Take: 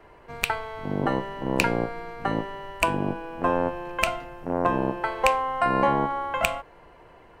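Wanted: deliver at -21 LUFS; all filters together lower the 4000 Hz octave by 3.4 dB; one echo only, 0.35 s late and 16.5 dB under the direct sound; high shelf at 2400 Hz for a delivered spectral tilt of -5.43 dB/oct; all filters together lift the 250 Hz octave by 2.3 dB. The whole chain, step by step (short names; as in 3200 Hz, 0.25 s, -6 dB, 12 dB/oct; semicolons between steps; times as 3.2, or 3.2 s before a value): bell 250 Hz +3 dB; high shelf 2400 Hz +3 dB; bell 4000 Hz -8.5 dB; echo 0.35 s -16.5 dB; gain +5 dB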